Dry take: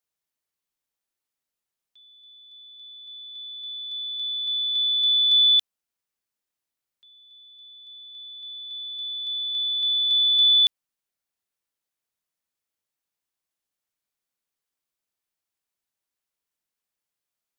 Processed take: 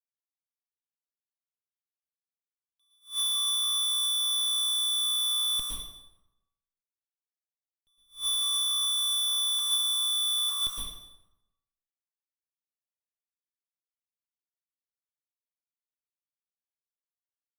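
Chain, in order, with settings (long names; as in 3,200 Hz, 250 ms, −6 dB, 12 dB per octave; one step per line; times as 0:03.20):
0:09.58–0:10.49: low-pass filter 3,400 Hz → 3,000 Hz 12 dB per octave
compressor whose output falls as the input rises −25 dBFS, ratio −1
comparator with hysteresis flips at −40 dBFS
dense smooth reverb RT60 0.93 s, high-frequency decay 0.75×, pre-delay 100 ms, DRR −5 dB
level that may rise only so fast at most 230 dB per second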